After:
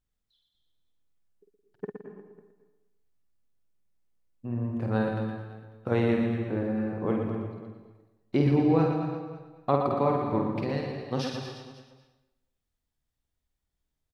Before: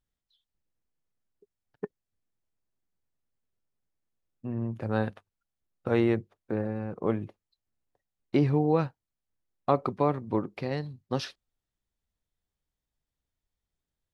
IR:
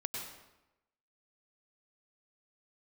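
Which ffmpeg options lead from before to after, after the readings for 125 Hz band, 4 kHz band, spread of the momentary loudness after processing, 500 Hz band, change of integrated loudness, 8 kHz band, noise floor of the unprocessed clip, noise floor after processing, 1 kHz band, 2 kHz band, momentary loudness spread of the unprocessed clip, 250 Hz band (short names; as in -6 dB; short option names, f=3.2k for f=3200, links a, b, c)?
+2.0 dB, +1.5 dB, 18 LU, +1.5 dB, +1.5 dB, n/a, under -85 dBFS, -83 dBFS, +1.5 dB, +1.5 dB, 15 LU, +3.0 dB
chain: -filter_complex "[0:a]lowshelf=f=160:g=3,aecho=1:1:50|120|218|355.2|547.3:0.631|0.398|0.251|0.158|0.1,asplit=2[a][b];[1:a]atrim=start_sample=2205,adelay=116[c];[b][c]afir=irnorm=-1:irlink=0,volume=-6.5dB[d];[a][d]amix=inputs=2:normalize=0,volume=-2dB"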